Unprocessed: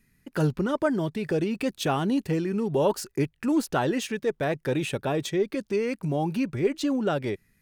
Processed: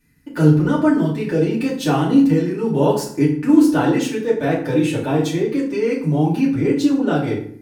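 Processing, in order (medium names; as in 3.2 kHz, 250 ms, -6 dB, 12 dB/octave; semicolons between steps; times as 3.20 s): FDN reverb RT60 0.57 s, low-frequency decay 1.45×, high-frequency decay 0.7×, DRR -7 dB; trim -2 dB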